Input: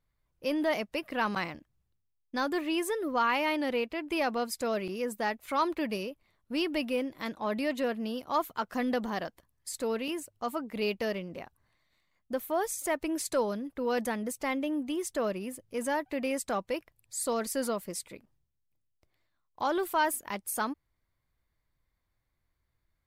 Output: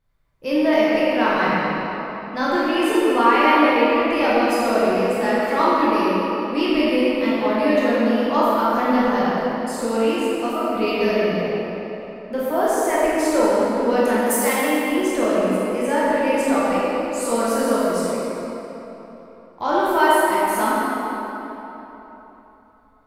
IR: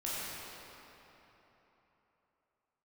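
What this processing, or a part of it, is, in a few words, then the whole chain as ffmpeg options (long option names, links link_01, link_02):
swimming-pool hall: -filter_complex "[0:a]asplit=3[link_01][link_02][link_03];[link_01]afade=type=out:start_time=14.21:duration=0.02[link_04];[link_02]aemphasis=mode=production:type=riaa,afade=type=in:start_time=14.21:duration=0.02,afade=type=out:start_time=14.78:duration=0.02[link_05];[link_03]afade=type=in:start_time=14.78:duration=0.02[link_06];[link_04][link_05][link_06]amix=inputs=3:normalize=0[link_07];[1:a]atrim=start_sample=2205[link_08];[link_07][link_08]afir=irnorm=-1:irlink=0,highshelf=frequency=4100:gain=-6.5,volume=8.5dB"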